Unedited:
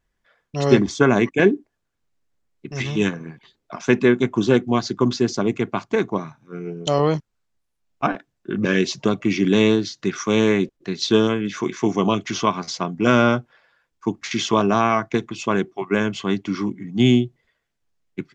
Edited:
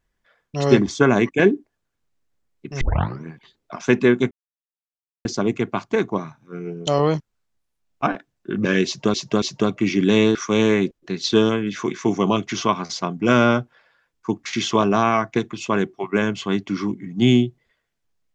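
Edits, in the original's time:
2.81 tape start 0.43 s
4.31–5.25 mute
8.86–9.14 loop, 3 plays
9.79–10.13 cut

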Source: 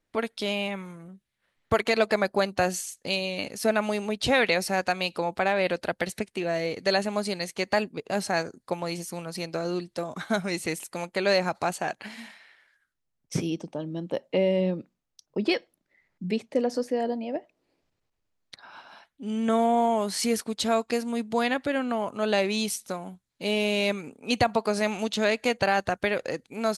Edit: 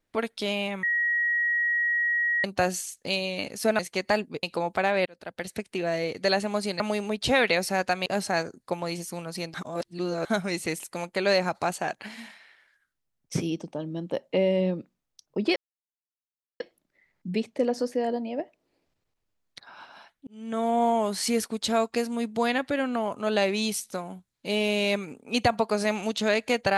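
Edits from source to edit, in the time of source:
0.83–2.44 bleep 1900 Hz -22 dBFS
3.79–5.05 swap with 7.42–8.06
5.68–6.35 fade in
9.54–10.25 reverse
15.56 insert silence 1.04 s
19.23–19.8 fade in

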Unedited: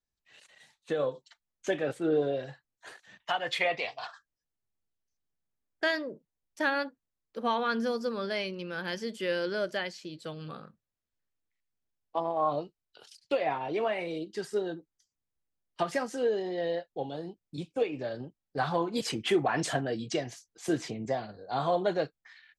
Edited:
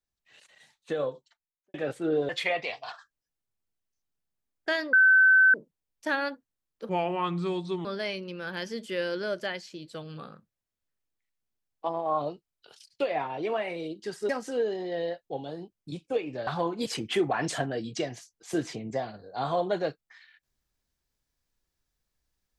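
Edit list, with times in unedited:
0.97–1.74 studio fade out
2.29–3.44 cut
6.08 add tone 1530 Hz -15 dBFS 0.61 s
7.43–8.16 speed 76%
14.6–15.95 cut
18.13–18.62 cut

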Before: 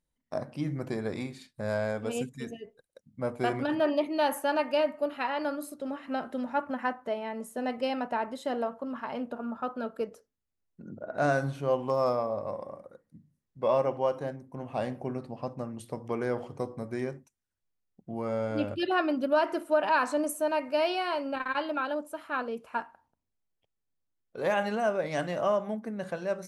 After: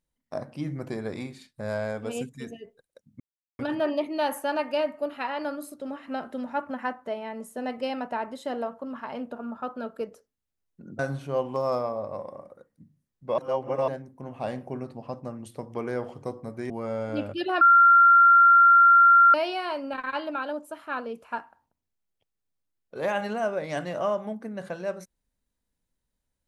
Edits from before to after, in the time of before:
3.2–3.59 mute
10.99–11.33 cut
13.72–14.22 reverse
17.04–18.12 cut
19.03–20.76 bleep 1380 Hz -12 dBFS

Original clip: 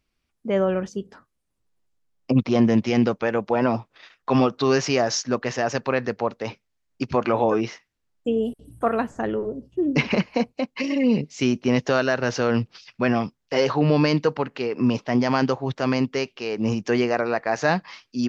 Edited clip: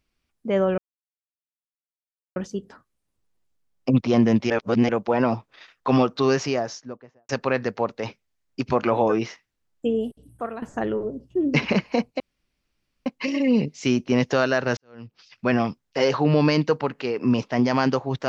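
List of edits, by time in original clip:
0.78 insert silence 1.58 s
2.92–3.31 reverse
4.55–5.71 studio fade out
8.28–9.04 fade out, to -14 dB
10.62 insert room tone 0.86 s
12.33–13.03 fade in quadratic

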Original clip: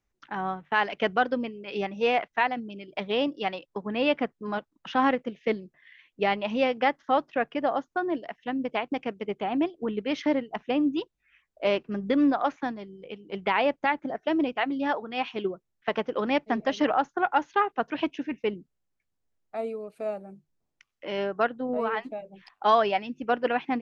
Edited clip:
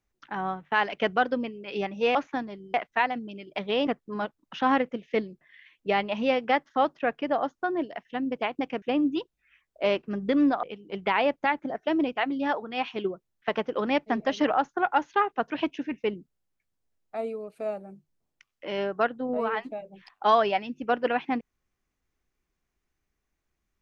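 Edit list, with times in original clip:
3.28–4.2 cut
9.15–10.63 cut
12.44–13.03 move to 2.15

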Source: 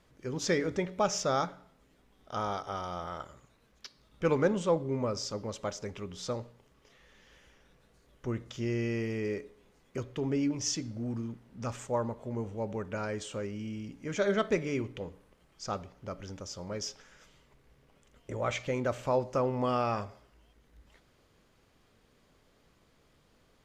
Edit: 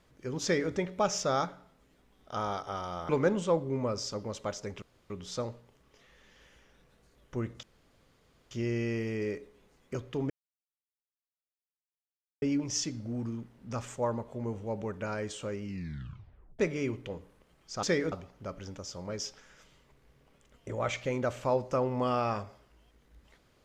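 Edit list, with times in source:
0.43–0.72 copy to 15.74
3.09–4.28 cut
6.01 insert room tone 0.28 s
8.54 insert room tone 0.88 s
10.33 insert silence 2.12 s
13.54 tape stop 0.96 s

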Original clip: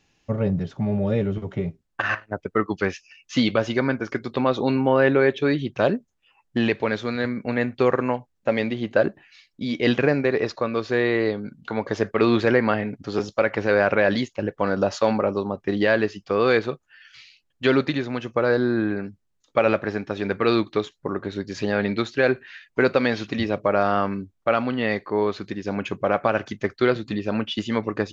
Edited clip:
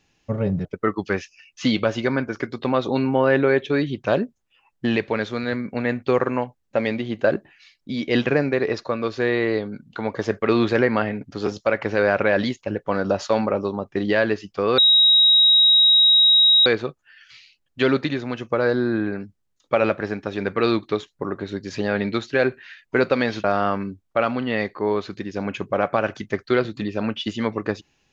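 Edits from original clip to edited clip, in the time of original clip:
0.65–2.37 cut
16.5 add tone 3810 Hz -11 dBFS 1.88 s
23.28–23.75 cut

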